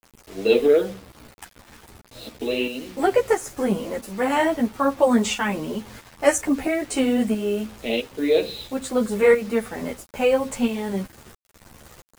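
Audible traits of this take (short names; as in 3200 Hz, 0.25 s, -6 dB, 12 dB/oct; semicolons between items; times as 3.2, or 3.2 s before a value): tremolo saw up 1.5 Hz, depth 55%; a quantiser's noise floor 8-bit, dither none; a shimmering, thickened sound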